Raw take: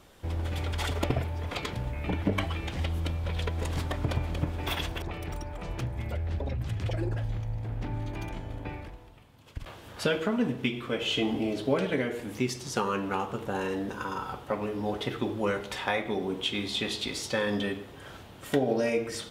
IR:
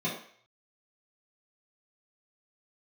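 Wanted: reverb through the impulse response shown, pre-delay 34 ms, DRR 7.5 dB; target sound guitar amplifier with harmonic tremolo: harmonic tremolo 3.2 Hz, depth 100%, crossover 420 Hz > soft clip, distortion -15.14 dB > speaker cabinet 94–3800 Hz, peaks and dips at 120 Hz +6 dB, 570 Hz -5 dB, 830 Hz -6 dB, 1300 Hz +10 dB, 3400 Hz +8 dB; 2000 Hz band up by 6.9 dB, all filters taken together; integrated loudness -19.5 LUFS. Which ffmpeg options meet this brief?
-filter_complex "[0:a]equalizer=f=2k:t=o:g=6,asplit=2[a][b];[1:a]atrim=start_sample=2205,adelay=34[c];[b][c]afir=irnorm=-1:irlink=0,volume=-15dB[d];[a][d]amix=inputs=2:normalize=0,acrossover=split=420[e][f];[e]aeval=exprs='val(0)*(1-1/2+1/2*cos(2*PI*3.2*n/s))':c=same[g];[f]aeval=exprs='val(0)*(1-1/2-1/2*cos(2*PI*3.2*n/s))':c=same[h];[g][h]amix=inputs=2:normalize=0,asoftclip=threshold=-25.5dB,highpass=94,equalizer=f=120:t=q:w=4:g=6,equalizer=f=570:t=q:w=4:g=-5,equalizer=f=830:t=q:w=4:g=-6,equalizer=f=1.3k:t=q:w=4:g=10,equalizer=f=3.4k:t=q:w=4:g=8,lowpass=f=3.8k:w=0.5412,lowpass=f=3.8k:w=1.3066,volume=15dB"

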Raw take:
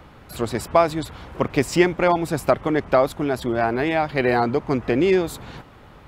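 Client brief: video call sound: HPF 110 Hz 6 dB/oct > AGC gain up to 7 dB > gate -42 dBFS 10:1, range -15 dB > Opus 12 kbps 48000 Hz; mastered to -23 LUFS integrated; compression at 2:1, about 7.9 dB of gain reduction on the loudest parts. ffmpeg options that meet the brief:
-af "acompressor=threshold=-26dB:ratio=2,highpass=f=110:p=1,dynaudnorm=m=7dB,agate=range=-15dB:threshold=-42dB:ratio=10,volume=5dB" -ar 48000 -c:a libopus -b:a 12k

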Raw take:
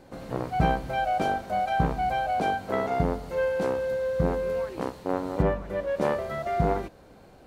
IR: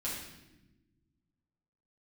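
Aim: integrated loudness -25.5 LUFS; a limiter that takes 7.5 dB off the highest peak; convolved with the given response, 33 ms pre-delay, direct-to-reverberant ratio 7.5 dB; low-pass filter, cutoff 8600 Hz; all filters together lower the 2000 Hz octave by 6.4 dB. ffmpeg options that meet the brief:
-filter_complex "[0:a]lowpass=8.6k,equalizer=f=2k:t=o:g=-9,alimiter=limit=-17.5dB:level=0:latency=1,asplit=2[a][b];[1:a]atrim=start_sample=2205,adelay=33[c];[b][c]afir=irnorm=-1:irlink=0,volume=-10.5dB[d];[a][d]amix=inputs=2:normalize=0,volume=3.5dB"

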